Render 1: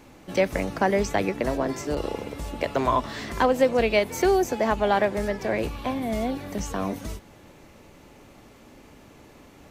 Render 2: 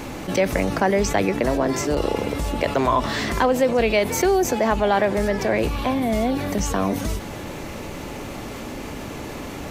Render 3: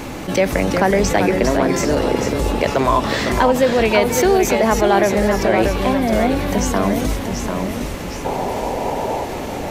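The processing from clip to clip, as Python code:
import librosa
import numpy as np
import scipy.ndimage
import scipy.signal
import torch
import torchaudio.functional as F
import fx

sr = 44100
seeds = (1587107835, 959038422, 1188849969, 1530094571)

y1 = fx.env_flatten(x, sr, amount_pct=50)
y2 = fx.spec_paint(y1, sr, seeds[0], shape='noise', start_s=8.25, length_s=0.99, low_hz=370.0, high_hz=1000.0, level_db=-27.0)
y2 = fx.echo_pitch(y2, sr, ms=341, semitones=-1, count=2, db_per_echo=-6.0)
y2 = y2 * 10.0 ** (3.5 / 20.0)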